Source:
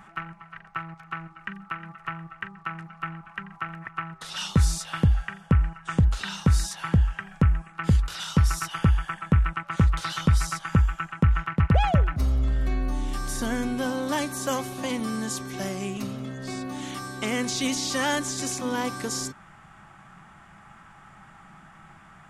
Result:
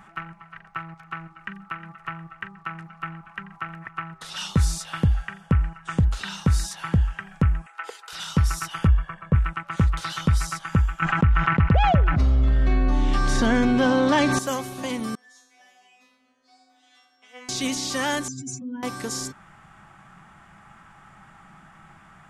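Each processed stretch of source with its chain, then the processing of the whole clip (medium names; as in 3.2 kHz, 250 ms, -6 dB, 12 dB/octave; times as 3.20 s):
7.66–8.13 s: elliptic high-pass 440 Hz, stop band 60 dB + comb of notches 570 Hz + tape noise reduction on one side only encoder only
8.87–9.35 s: low-pass 1 kHz 6 dB/octave + comb 1.8 ms, depth 59%
11.02–14.39 s: low-pass 4.4 kHz + level flattener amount 70%
15.15–17.49 s: three-band isolator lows -24 dB, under 450 Hz, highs -14 dB, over 5.8 kHz + feedback comb 250 Hz, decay 0.62 s, mix 100%
18.28–18.83 s: spectral contrast enhancement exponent 2.7 + high-order bell 650 Hz -15.5 dB 2.4 oct
whole clip: none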